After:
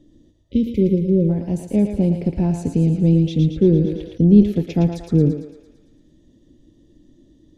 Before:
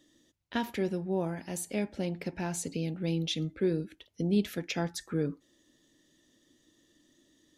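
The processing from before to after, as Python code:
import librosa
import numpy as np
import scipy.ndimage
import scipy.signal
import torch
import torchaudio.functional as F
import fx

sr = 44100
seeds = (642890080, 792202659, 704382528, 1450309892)

y = fx.tilt_eq(x, sr, slope=-4.5)
y = fx.spec_repair(y, sr, seeds[0], start_s=0.36, length_s=0.91, low_hz=560.0, high_hz=2000.0, source='before')
y = fx.peak_eq(y, sr, hz=1500.0, db=-12.0, octaves=1.1)
y = fx.echo_thinned(y, sr, ms=113, feedback_pct=63, hz=560.0, wet_db=-5.0)
y = fx.sustainer(y, sr, db_per_s=69.0, at=(3.65, 4.42), fade=0.02)
y = F.gain(torch.from_numpy(y), 6.5).numpy()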